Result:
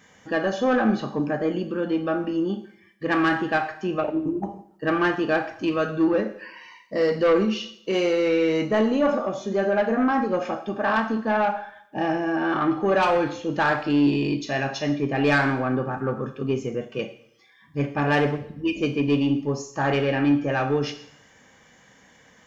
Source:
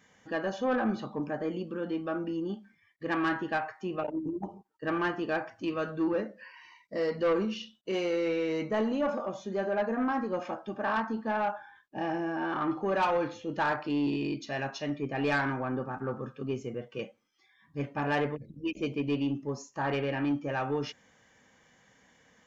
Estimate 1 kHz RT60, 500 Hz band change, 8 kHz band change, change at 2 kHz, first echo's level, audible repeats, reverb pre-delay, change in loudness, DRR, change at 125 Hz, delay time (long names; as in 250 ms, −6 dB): 0.70 s, +8.0 dB, can't be measured, +8.5 dB, no echo audible, no echo audible, 6 ms, +8.0 dB, 10.0 dB, +9.0 dB, no echo audible